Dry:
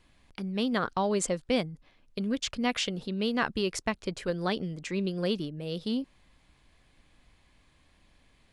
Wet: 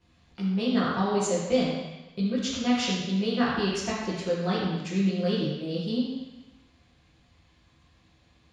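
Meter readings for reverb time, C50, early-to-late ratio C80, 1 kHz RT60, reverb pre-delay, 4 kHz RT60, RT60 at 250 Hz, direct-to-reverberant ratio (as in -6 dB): 1.1 s, -0.5 dB, 2.0 dB, 1.1 s, 6 ms, 1.1 s, 1.1 s, -9.5 dB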